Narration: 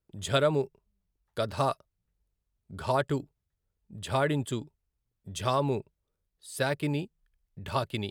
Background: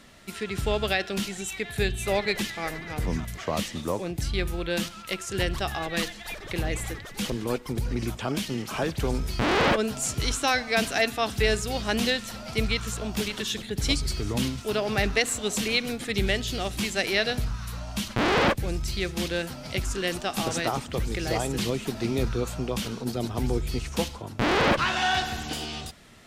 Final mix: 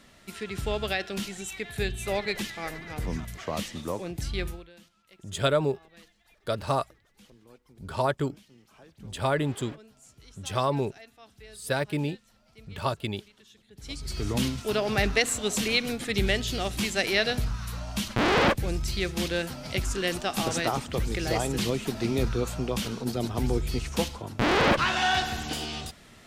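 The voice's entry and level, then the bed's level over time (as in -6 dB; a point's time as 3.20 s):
5.10 s, +1.0 dB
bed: 4.49 s -3.5 dB
4.73 s -26 dB
13.63 s -26 dB
14.23 s 0 dB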